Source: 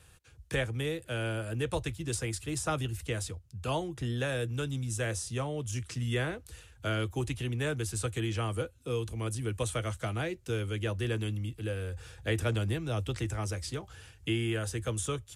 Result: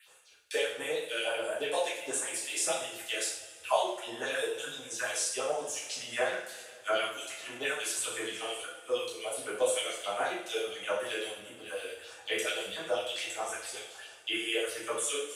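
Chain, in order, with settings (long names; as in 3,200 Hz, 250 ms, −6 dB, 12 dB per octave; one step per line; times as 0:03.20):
all-pass phaser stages 4, 1.5 Hz, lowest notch 140–4,600 Hz
auto-filter high-pass sine 8.5 Hz 530–3,500 Hz
coupled-rooms reverb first 0.6 s, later 3 s, from −19 dB, DRR −7.5 dB
level −2.5 dB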